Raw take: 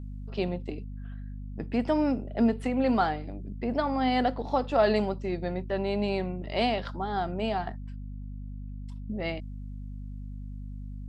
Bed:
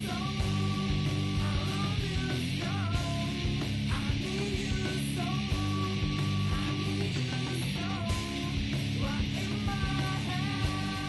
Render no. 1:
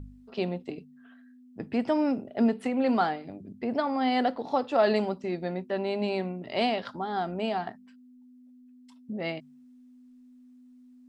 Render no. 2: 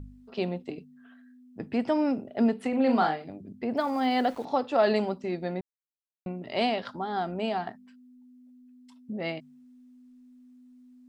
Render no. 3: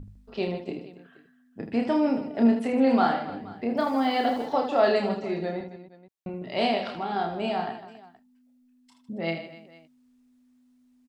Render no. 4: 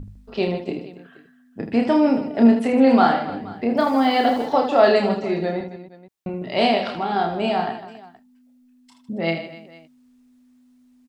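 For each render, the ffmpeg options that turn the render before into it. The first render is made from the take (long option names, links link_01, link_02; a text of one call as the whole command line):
ffmpeg -i in.wav -af "bandreject=frequency=50:width_type=h:width=4,bandreject=frequency=100:width_type=h:width=4,bandreject=frequency=150:width_type=h:width=4,bandreject=frequency=200:width_type=h:width=4" out.wav
ffmpeg -i in.wav -filter_complex "[0:a]asettb=1/sr,asplit=3[link_01][link_02][link_03];[link_01]atrim=end=2.694[link_04];[link_02]atrim=start=2.69:end=3.24,asetpts=PTS-STARTPTS,afade=type=in:duration=0.004:curve=qsin,afade=type=out:start_time=0.546:duration=0.004:curve=qsin,asplit=2[link_05][link_06];[link_06]adelay=38,volume=-6dB[link_07];[link_05][link_07]amix=inputs=2:normalize=0,atrim=end_sample=24255[link_08];[link_03]atrim=start=3.236[link_09];[link_04][link_08]acrossfade=duration=0.004:curve1=hsin:curve2=qsin[link_10];[link_10][link_09]acrossfade=duration=0.004:curve1=qsin:curve2=hsin,asettb=1/sr,asplit=3[link_11][link_12][link_13];[link_11]atrim=end=3.774[link_14];[link_12]atrim=start=3.77:end=4.45,asetpts=PTS-STARTPTS,afade=type=in:duration=0.004:curve=qsin,afade=type=out:start_time=0.676:duration=0.004:curve=qsin,aeval=exprs='val(0)*gte(abs(val(0)),0.00531)':channel_layout=same[link_15];[link_13]atrim=start=4.446[link_16];[link_14][link_15]acrossfade=duration=0.004:curve1=hsin:curve2=qsin[link_17];[link_17][link_16]acrossfade=duration=0.004:curve1=qsin:curve2=hsin,asplit=3[link_18][link_19][link_20];[link_18]atrim=end=5.61,asetpts=PTS-STARTPTS,afade=type=out:start_time=5.606:duration=0.004:curve=hsin[link_21];[link_19]atrim=start=5.61:end=6.26,asetpts=PTS-STARTPTS,volume=0[link_22];[link_20]atrim=start=6.26,asetpts=PTS-STARTPTS,afade=type=in:duration=0.004:curve=hsin[link_23];[link_21][link_22][link_23]concat=n=3:v=0:a=1" out.wav
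ffmpeg -i in.wav -af "aecho=1:1:30|78|154.8|277.7|474.3:0.631|0.398|0.251|0.158|0.1" out.wav
ffmpeg -i in.wav -af "volume=6.5dB" out.wav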